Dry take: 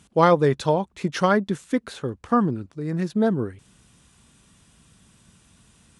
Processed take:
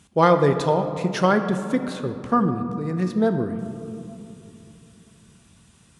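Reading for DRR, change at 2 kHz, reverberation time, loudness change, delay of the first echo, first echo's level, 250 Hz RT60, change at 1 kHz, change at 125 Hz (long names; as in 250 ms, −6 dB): 7.0 dB, +0.5 dB, 2.9 s, +1.0 dB, no echo audible, no echo audible, 3.6 s, +1.0 dB, +1.5 dB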